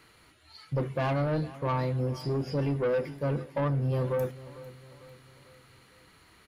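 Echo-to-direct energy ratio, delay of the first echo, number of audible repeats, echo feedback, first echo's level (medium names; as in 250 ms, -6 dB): -16.5 dB, 449 ms, 3, 48%, -17.5 dB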